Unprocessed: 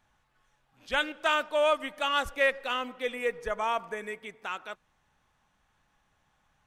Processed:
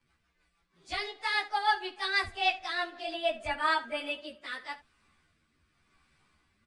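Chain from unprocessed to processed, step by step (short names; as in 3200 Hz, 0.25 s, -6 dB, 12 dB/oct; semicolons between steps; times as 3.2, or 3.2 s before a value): pitch shift by moving bins +5.5 st; vocal rider within 4 dB 2 s; rotary speaker horn 6.3 Hz, later 0.9 Hz, at 3.25; on a send: early reflections 13 ms -5.5 dB, 71 ms -16.5 dB; on the sum: downsampling 22050 Hz; gain +2.5 dB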